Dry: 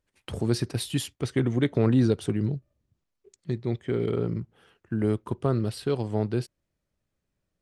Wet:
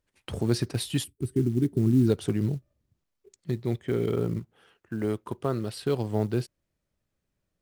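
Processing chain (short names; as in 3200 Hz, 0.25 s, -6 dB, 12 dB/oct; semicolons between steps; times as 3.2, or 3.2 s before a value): 1.04–2.07 spectral gain 410–7700 Hz -19 dB; 4.39–5.86 low shelf 250 Hz -7.5 dB; short-mantissa float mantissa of 4-bit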